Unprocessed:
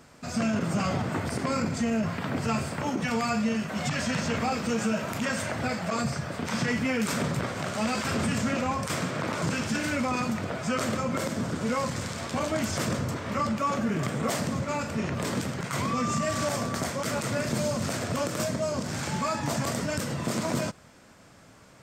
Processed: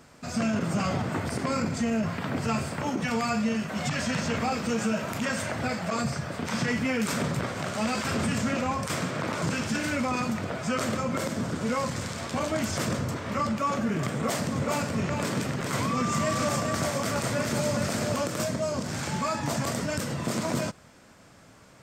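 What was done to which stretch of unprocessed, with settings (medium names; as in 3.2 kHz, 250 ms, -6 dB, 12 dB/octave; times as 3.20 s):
14.14–18.21 s: delay 417 ms -4 dB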